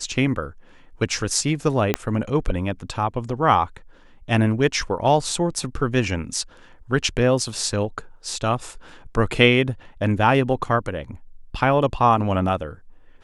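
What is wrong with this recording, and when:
0:01.94: click −5 dBFS

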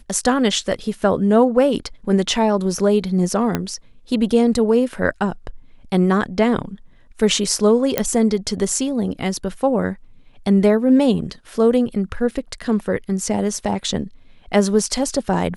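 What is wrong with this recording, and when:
0:03.55: click −6 dBFS
0:07.98: click −2 dBFS
0:12.31: drop-out 3.4 ms

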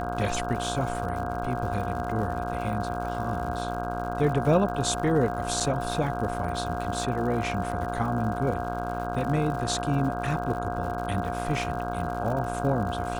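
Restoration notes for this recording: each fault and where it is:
mains buzz 60 Hz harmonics 27 −33 dBFS
surface crackle 130 per second −35 dBFS
whistle 710 Hz −32 dBFS
0:05.60–0:05.61: drop-out 5.8 ms

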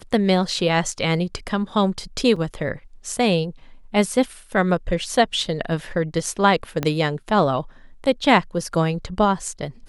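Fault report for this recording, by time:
0:02.36: drop-out 4.2 ms
0:06.83: click −9 dBFS

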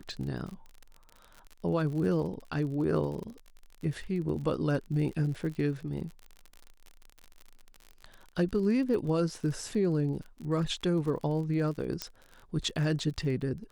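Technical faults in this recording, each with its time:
surface crackle 46 per second −38 dBFS
0:12.02: click −16 dBFS

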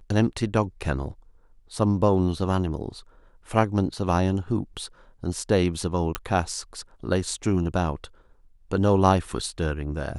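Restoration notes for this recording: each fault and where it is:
0:06.15: click −9 dBFS

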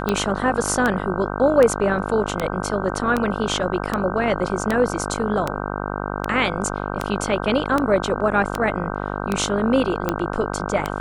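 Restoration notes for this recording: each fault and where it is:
mains buzz 50 Hz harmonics 31 −27 dBFS
scratch tick 78 rpm −7 dBFS

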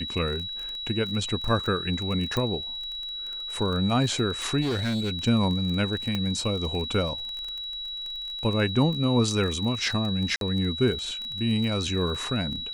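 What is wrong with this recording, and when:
surface crackle 22 per second −31 dBFS
whistle 3,900 Hz −32 dBFS
0:02.37: click −14 dBFS
0:04.61–0:05.11: clipping −23.5 dBFS
0:06.15: click −15 dBFS
0:10.36–0:10.41: drop-out 52 ms

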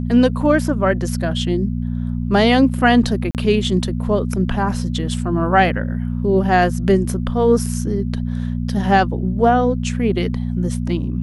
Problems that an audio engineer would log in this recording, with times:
mains hum 60 Hz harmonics 4 −22 dBFS
0:03.31–0:03.35: drop-out 38 ms
0:07.66: drop-out 2.3 ms

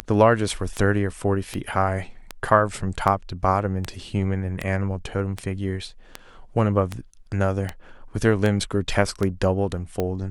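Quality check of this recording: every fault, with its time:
scratch tick 78 rpm −12 dBFS

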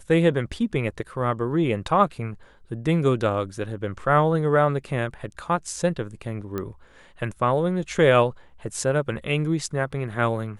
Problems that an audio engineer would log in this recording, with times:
0:06.58: click −16 dBFS

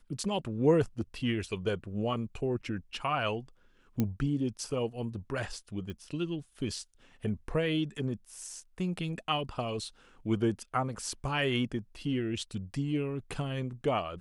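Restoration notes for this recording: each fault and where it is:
0:04.00: click −16 dBFS
0:05.90: click −29 dBFS

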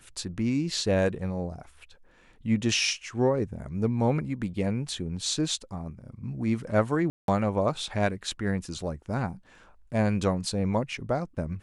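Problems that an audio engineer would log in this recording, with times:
0:07.10–0:07.28: drop-out 182 ms

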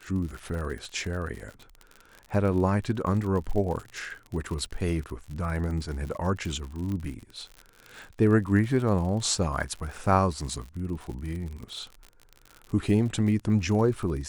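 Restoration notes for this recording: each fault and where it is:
surface crackle 60 per second −34 dBFS
0:06.92: click −23 dBFS

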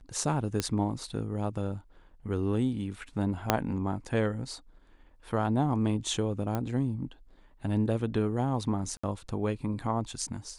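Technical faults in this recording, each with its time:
0:00.60: click −13 dBFS
0:03.50: click −6 dBFS
0:06.55: click −18 dBFS
0:08.97–0:09.04: drop-out 65 ms

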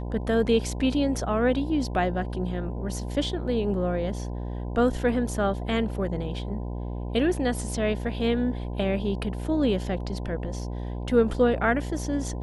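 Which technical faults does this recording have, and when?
mains buzz 60 Hz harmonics 17 −32 dBFS

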